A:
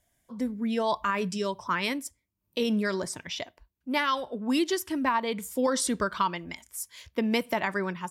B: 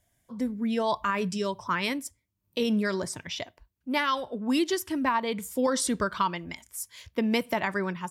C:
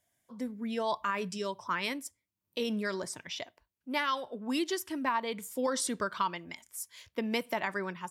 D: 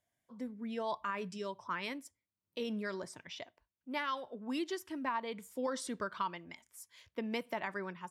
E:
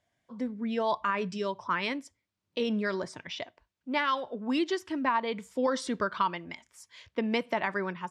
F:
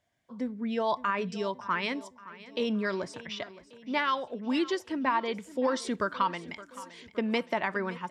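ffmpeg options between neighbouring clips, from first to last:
-af "equalizer=f=110:w=1.5:g=5.5"
-af "highpass=f=270:p=1,volume=0.631"
-af "highshelf=f=5000:g=-8.5,volume=0.562"
-af "lowpass=5700,volume=2.66"
-af "aecho=1:1:568|1136|1704|2272:0.133|0.0693|0.0361|0.0188"

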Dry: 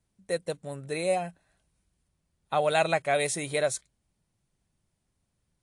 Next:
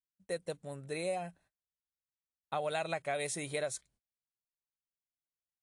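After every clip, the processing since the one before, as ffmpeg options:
-af "agate=range=0.0282:threshold=0.00126:ratio=16:detection=peak,acompressor=threshold=0.0562:ratio=6,volume=0.501"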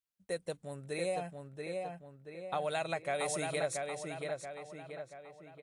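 -filter_complex "[0:a]asplit=2[s0][s1];[s1]adelay=681,lowpass=f=3500:p=1,volume=0.668,asplit=2[s2][s3];[s3]adelay=681,lowpass=f=3500:p=1,volume=0.51,asplit=2[s4][s5];[s5]adelay=681,lowpass=f=3500:p=1,volume=0.51,asplit=2[s6][s7];[s7]adelay=681,lowpass=f=3500:p=1,volume=0.51,asplit=2[s8][s9];[s9]adelay=681,lowpass=f=3500:p=1,volume=0.51,asplit=2[s10][s11];[s11]adelay=681,lowpass=f=3500:p=1,volume=0.51,asplit=2[s12][s13];[s13]adelay=681,lowpass=f=3500:p=1,volume=0.51[s14];[s0][s2][s4][s6][s8][s10][s12][s14]amix=inputs=8:normalize=0"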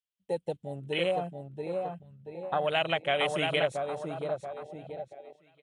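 -af "afwtdn=0.00891,equalizer=f=3100:w=2.2:g=14,volume=2"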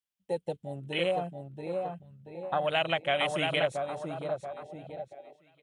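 -af "bandreject=f=440:w=12"

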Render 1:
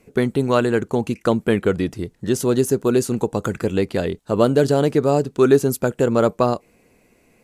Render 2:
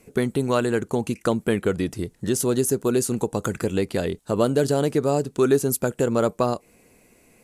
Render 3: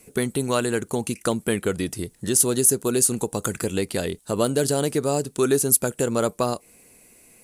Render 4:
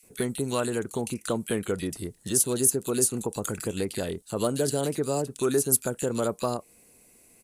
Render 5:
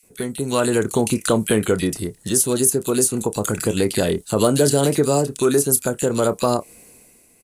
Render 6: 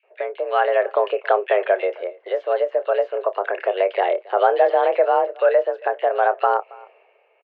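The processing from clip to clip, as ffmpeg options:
-filter_complex "[0:a]equalizer=f=10000:w=0.74:g=8,asplit=2[s0][s1];[s1]acompressor=threshold=0.0631:ratio=6,volume=1.26[s2];[s0][s2]amix=inputs=2:normalize=0,volume=0.447"
-filter_complex "[0:a]highshelf=f=2900:g=9,acrossover=split=5200[s0][s1];[s1]aexciter=amount=1.6:drive=4.3:freq=8700[s2];[s0][s2]amix=inputs=2:normalize=0,volume=0.794"
-filter_complex "[0:a]acrossover=split=2000[s0][s1];[s0]adelay=30[s2];[s2][s1]amix=inputs=2:normalize=0,volume=0.596"
-filter_complex "[0:a]dynaudnorm=f=110:g=11:m=3.76,asplit=2[s0][s1];[s1]adelay=28,volume=0.211[s2];[s0][s2]amix=inputs=2:normalize=0,asplit=2[s3][s4];[s4]alimiter=limit=0.316:level=0:latency=1:release=51,volume=1.33[s5];[s3][s5]amix=inputs=2:normalize=0,volume=0.501"
-filter_complex "[0:a]asplit=2[s0][s1];[s1]adelay=274.1,volume=0.0708,highshelf=f=4000:g=-6.17[s2];[s0][s2]amix=inputs=2:normalize=0,highpass=f=250:t=q:w=0.5412,highpass=f=250:t=q:w=1.307,lowpass=f=2500:t=q:w=0.5176,lowpass=f=2500:t=q:w=0.7071,lowpass=f=2500:t=q:w=1.932,afreqshift=190,volume=1.19"

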